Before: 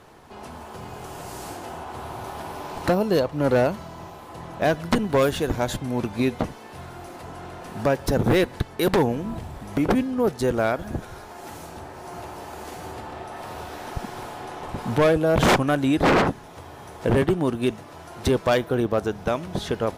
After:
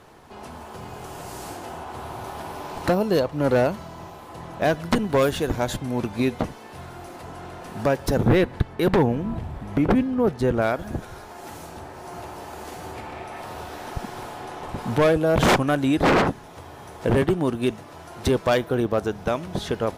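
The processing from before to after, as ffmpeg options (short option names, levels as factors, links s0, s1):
-filter_complex "[0:a]asettb=1/sr,asplit=3[s0][s1][s2];[s0]atrim=end=8.244[s3];[s1]atrim=start=8.24:end=10.62,asetpts=PTS-STARTPTS,afade=t=in:d=0.004:c=qsin,afade=t=out:st=2.376:d=0.004:c=qsin,bass=f=250:g=4,treble=f=4000:g=-9[s4];[s2]atrim=start=10.616[s5];[s3][s4]acrossfade=d=0.004:c1=hsin:c2=qsin[s6];[s6][s5]acrossfade=d=0.004:c1=qsin:c2=hsin,asettb=1/sr,asplit=3[s7][s8][s9];[s7]atrim=end=12.954[s10];[s8]atrim=start=12.95:end=13.42,asetpts=PTS-STARTPTS,afade=t=in:d=0.004:c=qsin,afade=t=out:st=0.466:d=0.004:c=qsin,equalizer=f=2300:t=o:w=0.31:g=9[s11];[s9]atrim=start=13.416[s12];[s10][s11]acrossfade=d=0.004:c1=hsin:c2=qsin[s13];[s13][s12]acrossfade=d=0.004:c1=qsin:c2=hsin"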